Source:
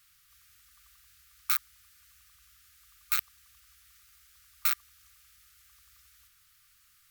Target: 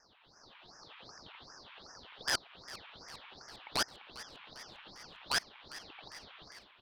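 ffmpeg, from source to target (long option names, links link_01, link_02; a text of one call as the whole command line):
ffmpeg -i in.wav -filter_complex "[0:a]areverse,alimiter=limit=-15.5dB:level=0:latency=1:release=426,highpass=frequency=390:width_type=q:width=0.5412,highpass=frequency=390:width_type=q:width=1.307,lowpass=frequency=2400:width_type=q:width=0.5176,lowpass=frequency=2400:width_type=q:width=0.7071,lowpass=frequency=2400:width_type=q:width=1.932,afreqshift=300,aeval=exprs='clip(val(0),-1,0.00376)':channel_layout=same,dynaudnorm=framelen=120:gausssize=7:maxgain=10dB,aeval=exprs='0.15*sin(PI/2*2.82*val(0)/0.15)':channel_layout=same,asplit=2[link_01][link_02];[link_02]asplit=7[link_03][link_04][link_05][link_06][link_07][link_08][link_09];[link_03]adelay=418,afreqshift=-96,volume=-16dB[link_10];[link_04]adelay=836,afreqshift=-192,volume=-19.7dB[link_11];[link_05]adelay=1254,afreqshift=-288,volume=-23.5dB[link_12];[link_06]adelay=1672,afreqshift=-384,volume=-27.2dB[link_13];[link_07]adelay=2090,afreqshift=-480,volume=-31dB[link_14];[link_08]adelay=2508,afreqshift=-576,volume=-34.7dB[link_15];[link_09]adelay=2926,afreqshift=-672,volume=-38.5dB[link_16];[link_10][link_11][link_12][link_13][link_14][link_15][link_16]amix=inputs=7:normalize=0[link_17];[link_01][link_17]amix=inputs=2:normalize=0,asetrate=45938,aresample=44100,aeval=exprs='val(0)*sin(2*PI*2000*n/s+2000*0.7/2.6*sin(2*PI*2.6*n/s))':channel_layout=same,volume=-2.5dB" out.wav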